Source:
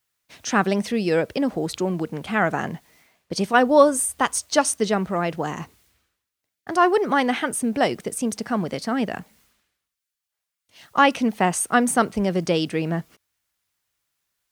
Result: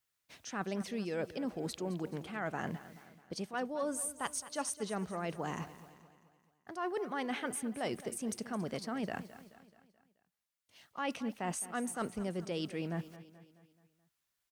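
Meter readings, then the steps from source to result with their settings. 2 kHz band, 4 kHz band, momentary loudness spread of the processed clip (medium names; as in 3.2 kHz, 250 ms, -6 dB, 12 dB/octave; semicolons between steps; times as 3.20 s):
-17.5 dB, -15.5 dB, 11 LU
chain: reverse; compression 6:1, threshold -27 dBFS, peak gain reduction 17 dB; reverse; feedback delay 215 ms, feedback 51%, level -15.5 dB; trim -7.5 dB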